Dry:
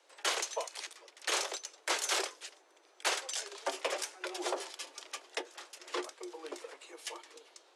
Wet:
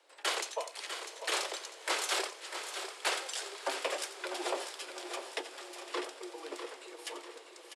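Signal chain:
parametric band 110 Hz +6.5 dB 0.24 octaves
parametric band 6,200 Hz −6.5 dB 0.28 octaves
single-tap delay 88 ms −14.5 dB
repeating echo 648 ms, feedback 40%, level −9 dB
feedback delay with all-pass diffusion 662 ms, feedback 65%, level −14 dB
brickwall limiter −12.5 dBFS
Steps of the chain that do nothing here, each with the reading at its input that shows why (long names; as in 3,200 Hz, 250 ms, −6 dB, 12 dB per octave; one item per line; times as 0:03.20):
parametric band 110 Hz: nothing at its input below 250 Hz
brickwall limiter −12.5 dBFS: peak of its input −17.5 dBFS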